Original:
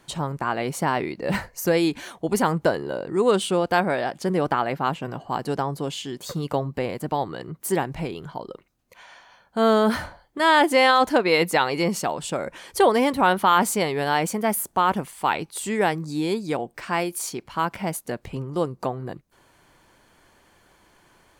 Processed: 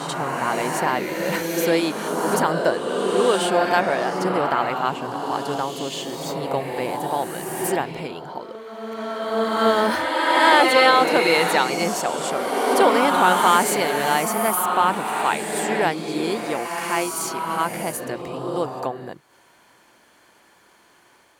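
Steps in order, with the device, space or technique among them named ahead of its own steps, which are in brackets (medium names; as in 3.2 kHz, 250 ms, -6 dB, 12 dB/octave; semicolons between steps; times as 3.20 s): ghost voice (reverse; reverberation RT60 2.9 s, pre-delay 35 ms, DRR 1 dB; reverse; high-pass 360 Hz 6 dB/octave); trim +1.5 dB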